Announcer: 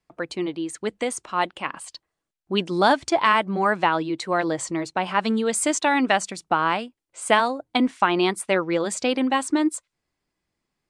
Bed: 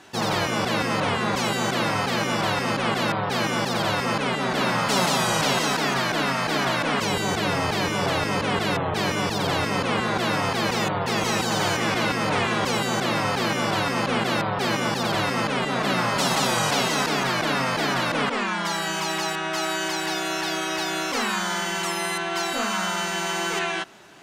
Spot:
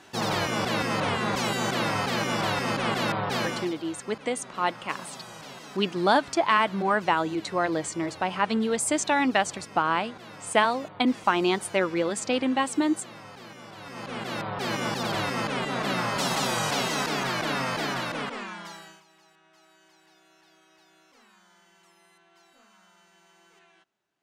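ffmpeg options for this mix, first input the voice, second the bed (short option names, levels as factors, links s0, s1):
-filter_complex "[0:a]adelay=3250,volume=0.708[s0];[1:a]volume=4.73,afade=t=out:st=3.36:d=0.39:silence=0.125893,afade=t=in:st=13.77:d=1.06:silence=0.149624,afade=t=out:st=17.73:d=1.3:silence=0.0354813[s1];[s0][s1]amix=inputs=2:normalize=0"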